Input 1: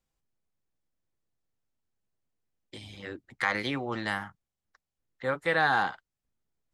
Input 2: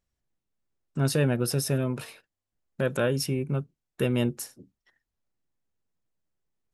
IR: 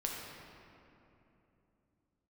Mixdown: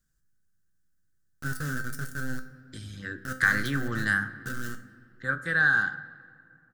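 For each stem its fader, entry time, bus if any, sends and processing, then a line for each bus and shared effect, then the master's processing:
+2.5 dB, 0.00 s, send −14 dB, parametric band 1,400 Hz −11 dB 0.22 octaves; hum removal 63.76 Hz, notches 27
−3.5 dB, 0.45 s, send −12 dB, adaptive Wiener filter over 15 samples; bit reduction 4 bits; tuned comb filter 260 Hz, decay 0.35 s, harmonics all, mix 80%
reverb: on, RT60 3.0 s, pre-delay 6 ms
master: drawn EQ curve 170 Hz 0 dB, 960 Hz −21 dB, 1,500 Hz +13 dB, 2,200 Hz −16 dB, 6,600 Hz −1 dB; speech leveller within 5 dB 2 s

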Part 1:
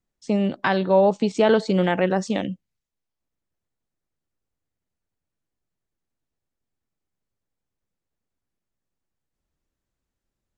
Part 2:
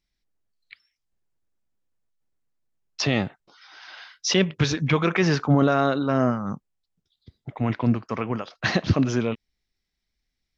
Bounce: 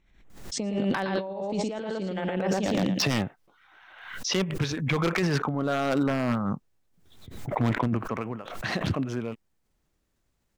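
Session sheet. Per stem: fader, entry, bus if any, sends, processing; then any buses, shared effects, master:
+0.5 dB, 0.30 s, no send, echo send −3 dB, de-essing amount 65%
0:02.84 −1 dB → 0:03.47 −11 dB → 0:04.85 −11 dB → 0:05.31 −4 dB → 0:07.97 −4 dB → 0:08.33 −13.5 dB, 0.00 s, no send, no echo send, adaptive Wiener filter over 9 samples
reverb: not used
echo: repeating echo 114 ms, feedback 16%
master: compressor whose output falls as the input rises −27 dBFS, ratio −1; wave folding −17 dBFS; background raised ahead of every attack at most 64 dB per second

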